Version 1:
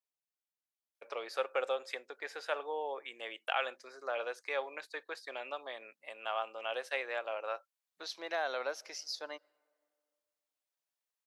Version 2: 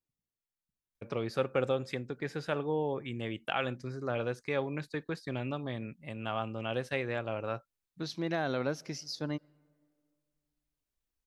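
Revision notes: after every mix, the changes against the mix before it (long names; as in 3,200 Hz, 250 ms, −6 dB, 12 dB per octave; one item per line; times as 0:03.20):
master: remove high-pass filter 540 Hz 24 dB per octave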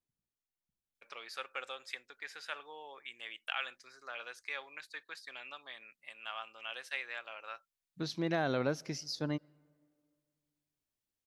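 first voice: add high-pass filter 1,500 Hz 12 dB per octave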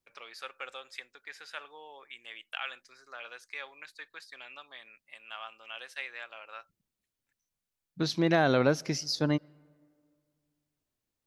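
first voice: entry −0.95 s
second voice +8.0 dB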